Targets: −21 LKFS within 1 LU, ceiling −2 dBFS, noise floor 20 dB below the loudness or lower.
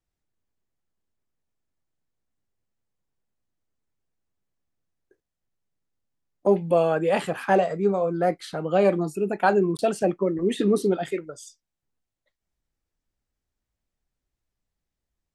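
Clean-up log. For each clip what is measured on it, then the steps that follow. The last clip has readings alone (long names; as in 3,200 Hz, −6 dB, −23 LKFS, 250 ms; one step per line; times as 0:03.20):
number of dropouts 1; longest dropout 19 ms; integrated loudness −23.5 LKFS; sample peak −7.5 dBFS; target loudness −21.0 LKFS
→ repair the gap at 0:09.77, 19 ms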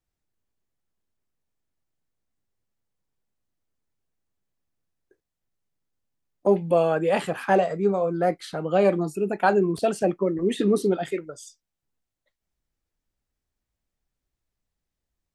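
number of dropouts 0; integrated loudness −23.5 LKFS; sample peak −7.5 dBFS; target loudness −21.0 LKFS
→ level +2.5 dB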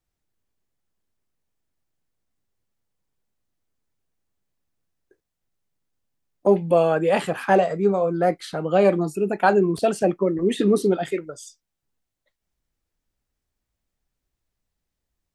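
integrated loudness −21.0 LKFS; sample peak −5.0 dBFS; background noise floor −82 dBFS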